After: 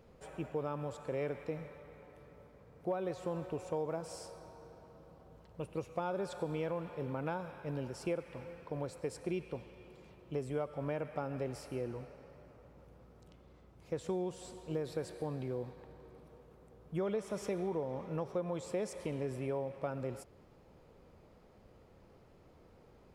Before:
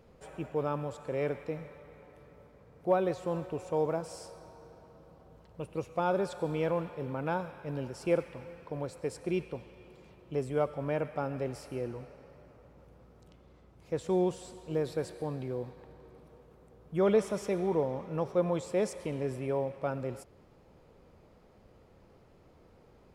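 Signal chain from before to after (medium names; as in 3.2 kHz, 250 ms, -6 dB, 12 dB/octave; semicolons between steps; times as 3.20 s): compression 6:1, threshold -31 dBFS, peak gain reduction 10.5 dB; trim -1.5 dB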